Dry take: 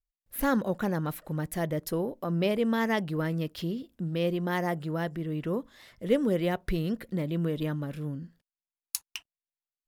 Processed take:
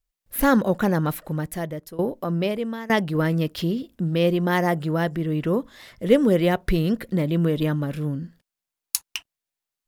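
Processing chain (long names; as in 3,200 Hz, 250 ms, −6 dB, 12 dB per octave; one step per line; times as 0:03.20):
0:01.08–0:03.15: shaped tremolo saw down 1.1 Hz, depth 90%
level +8 dB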